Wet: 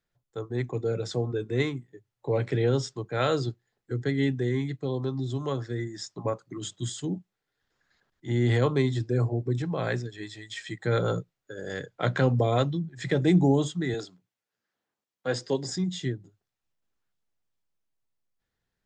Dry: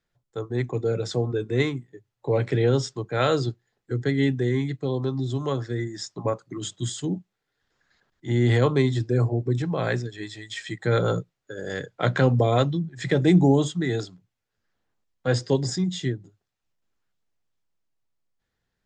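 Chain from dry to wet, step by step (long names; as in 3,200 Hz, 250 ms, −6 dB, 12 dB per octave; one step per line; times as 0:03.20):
0:13.94–0:15.75: Bessel high-pass filter 230 Hz, order 2
level −3.5 dB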